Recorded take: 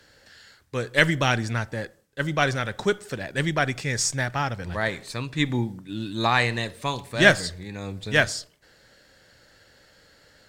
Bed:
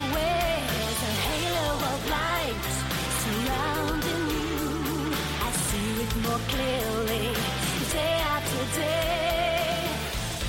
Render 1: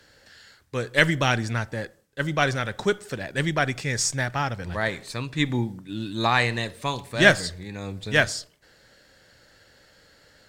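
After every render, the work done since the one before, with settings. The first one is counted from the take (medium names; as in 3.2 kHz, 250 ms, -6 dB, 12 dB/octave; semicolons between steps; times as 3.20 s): no audible change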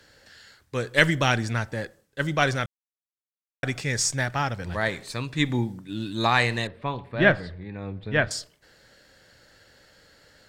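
2.66–3.63 s: mute; 6.67–8.31 s: distance through air 440 m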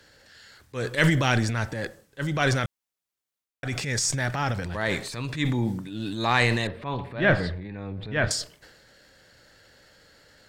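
transient shaper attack -7 dB, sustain +8 dB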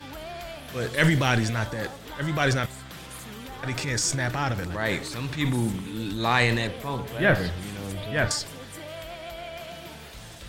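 add bed -12.5 dB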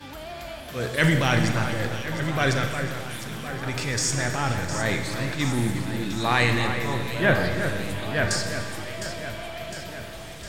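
echo whose repeats swap between lows and highs 354 ms, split 2.3 kHz, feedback 78%, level -8 dB; Schroeder reverb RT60 1.9 s, combs from 29 ms, DRR 6.5 dB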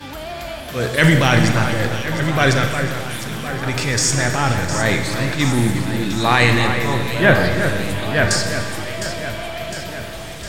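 trim +7.5 dB; peak limiter -1 dBFS, peak gain reduction 2 dB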